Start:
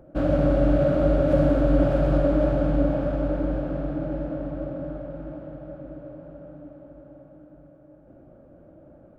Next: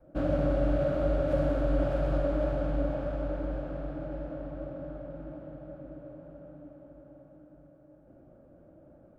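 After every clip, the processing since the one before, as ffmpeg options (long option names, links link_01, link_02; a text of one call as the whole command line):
ffmpeg -i in.wav -af "adynamicequalizer=threshold=0.0158:dfrequency=220:dqfactor=0.79:tfrequency=220:tqfactor=0.79:attack=5:release=100:ratio=0.375:range=3:mode=cutabove:tftype=bell,volume=-5.5dB" out.wav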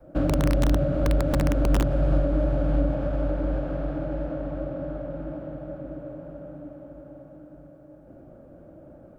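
ffmpeg -i in.wav -filter_complex "[0:a]aeval=exprs='(mod(7.94*val(0)+1,2)-1)/7.94':channel_layout=same,acrossover=split=330[link_01][link_02];[link_02]acompressor=threshold=-38dB:ratio=4[link_03];[link_01][link_03]amix=inputs=2:normalize=0,volume=8dB" out.wav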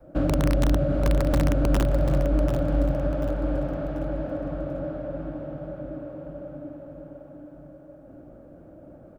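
ffmpeg -i in.wav -af "aecho=1:1:739|1478|2217|2956:0.355|0.135|0.0512|0.0195" out.wav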